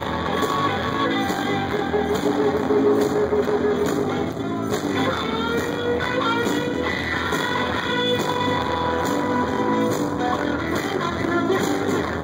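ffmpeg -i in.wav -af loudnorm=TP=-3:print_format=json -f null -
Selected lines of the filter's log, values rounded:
"input_i" : "-22.1",
"input_tp" : "-7.8",
"input_lra" : "1.1",
"input_thresh" : "-32.1",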